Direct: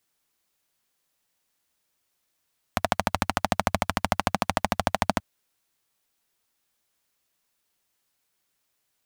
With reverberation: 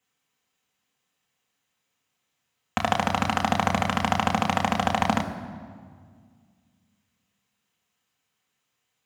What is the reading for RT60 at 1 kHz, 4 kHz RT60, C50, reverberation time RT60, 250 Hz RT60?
1.8 s, 1.3 s, 10.5 dB, 1.9 s, 2.4 s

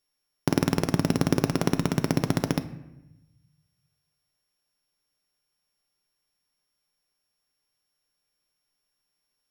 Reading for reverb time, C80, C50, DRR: 0.95 s, 16.0 dB, 14.0 dB, 8.5 dB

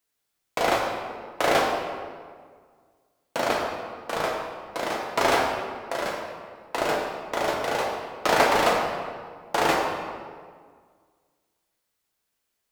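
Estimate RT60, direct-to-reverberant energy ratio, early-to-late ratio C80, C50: 1.8 s, -2.0 dB, 3.5 dB, 1.5 dB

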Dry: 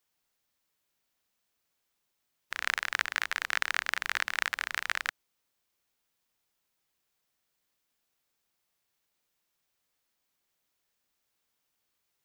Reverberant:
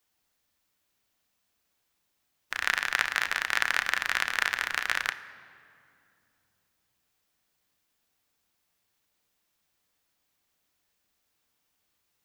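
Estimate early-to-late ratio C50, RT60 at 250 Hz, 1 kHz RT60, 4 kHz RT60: 14.0 dB, 3.9 s, 2.3 s, 1.6 s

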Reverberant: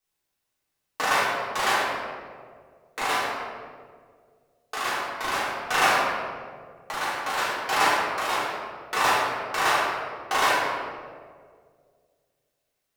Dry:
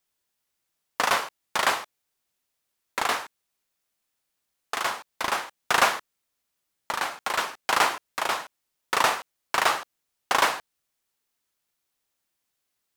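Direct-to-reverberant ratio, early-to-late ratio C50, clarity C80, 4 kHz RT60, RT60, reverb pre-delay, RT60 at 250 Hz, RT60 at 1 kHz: -9.0 dB, -1.5 dB, 0.5 dB, 1.0 s, 2.0 s, 3 ms, 2.1 s, 1.6 s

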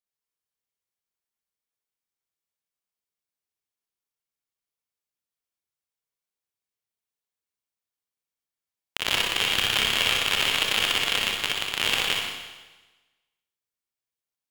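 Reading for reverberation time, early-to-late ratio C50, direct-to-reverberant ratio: 1.2 s, -0.5 dB, -2.0 dB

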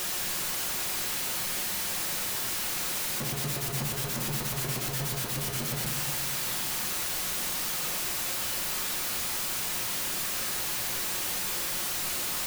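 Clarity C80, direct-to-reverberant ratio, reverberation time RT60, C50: 7.5 dB, 0.5 dB, 1.6 s, 6.5 dB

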